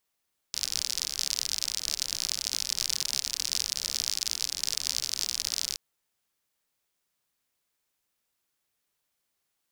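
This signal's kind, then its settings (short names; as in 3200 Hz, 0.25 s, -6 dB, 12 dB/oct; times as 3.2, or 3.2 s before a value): rain from filtered ticks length 5.22 s, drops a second 64, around 5100 Hz, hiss -20 dB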